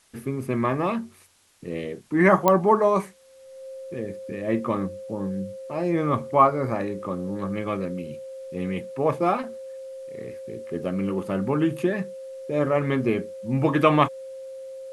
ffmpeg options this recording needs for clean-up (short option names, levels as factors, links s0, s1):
-af "adeclick=t=4,bandreject=f=530:w=30,agate=range=0.0891:threshold=0.0251"